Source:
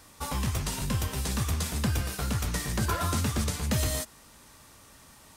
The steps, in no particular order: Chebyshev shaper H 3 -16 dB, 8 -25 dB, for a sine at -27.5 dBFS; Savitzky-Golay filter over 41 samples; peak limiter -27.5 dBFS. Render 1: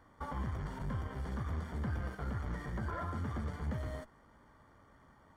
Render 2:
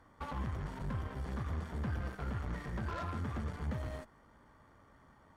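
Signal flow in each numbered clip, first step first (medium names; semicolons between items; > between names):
peak limiter > Chebyshev shaper > Savitzky-Golay filter; peak limiter > Savitzky-Golay filter > Chebyshev shaper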